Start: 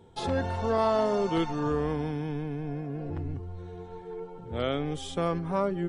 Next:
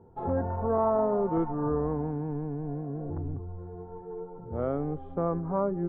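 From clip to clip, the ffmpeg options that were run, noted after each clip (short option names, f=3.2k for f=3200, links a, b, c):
-af "lowpass=f=1.2k:w=0.5412,lowpass=f=1.2k:w=1.3066"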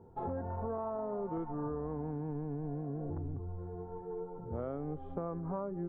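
-af "acompressor=threshold=-33dB:ratio=6,volume=-1.5dB"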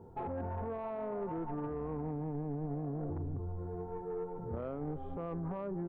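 -af "alimiter=level_in=9dB:limit=-24dB:level=0:latency=1:release=11,volume=-9dB,asoftclip=type=tanh:threshold=-34.5dB,aecho=1:1:301:0.075,volume=3.5dB"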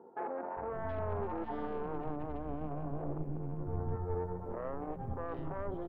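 -filter_complex "[0:a]aeval=exprs='val(0)+0.002*(sin(2*PI*60*n/s)+sin(2*PI*2*60*n/s)/2+sin(2*PI*3*60*n/s)/3+sin(2*PI*4*60*n/s)/4+sin(2*PI*5*60*n/s)/5)':c=same,aeval=exprs='0.0282*(cos(1*acos(clip(val(0)/0.0282,-1,1)))-cos(1*PI/2))+0.0126*(cos(2*acos(clip(val(0)/0.0282,-1,1)))-cos(2*PI/2))':c=same,acrossover=split=260|2200[a][b][c];[a]adelay=570[d];[c]adelay=720[e];[d][b][e]amix=inputs=3:normalize=0,volume=1dB"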